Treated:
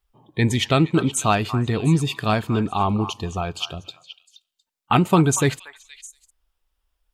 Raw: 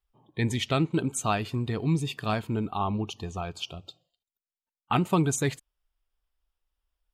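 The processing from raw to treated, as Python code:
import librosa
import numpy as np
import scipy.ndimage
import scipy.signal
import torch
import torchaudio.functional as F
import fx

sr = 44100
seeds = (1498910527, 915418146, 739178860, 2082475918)

y = fx.echo_stepped(x, sr, ms=236, hz=1200.0, octaves=1.4, feedback_pct=70, wet_db=-9.5)
y = F.gain(torch.from_numpy(y), 7.5).numpy()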